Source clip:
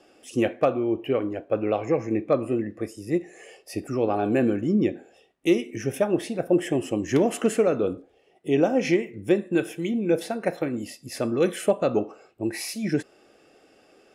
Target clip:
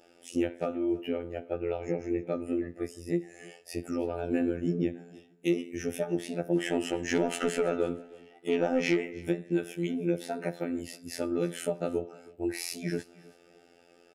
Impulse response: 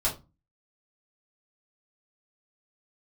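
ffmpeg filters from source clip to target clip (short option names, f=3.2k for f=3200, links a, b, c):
-filter_complex "[0:a]acrossover=split=240[a][b];[b]acompressor=threshold=-26dB:ratio=6[c];[a][c]amix=inputs=2:normalize=0,asettb=1/sr,asplit=3[d][e][f];[d]atrim=end=6.564[g];[e]atrim=start=6.56:end=9.25,asetpts=PTS-STARTPTS,afade=t=in:d=0.004:c=qsin,afade=t=out:st=2.686:d=0.004:c=qsin,asplit=2[h][i];[i]highpass=f=720:p=1,volume=15dB,asoftclip=type=tanh:threshold=-14dB[j];[h][j]amix=inputs=2:normalize=0,lowpass=f=4k:p=1,volume=-6dB[k];[f]atrim=start=9.246[l];[g][k]acrossfade=d=0.004:c1=hsin:c2=qsin[m];[m][l]acrossfade=d=0.004:c1=qsin:c2=hsin,afftfilt=real='hypot(re,im)*cos(PI*b)':imag='0':win_size=2048:overlap=0.75,asuperstop=centerf=1100:order=20:qfactor=6.4,aecho=1:1:318|636:0.0794|0.0183"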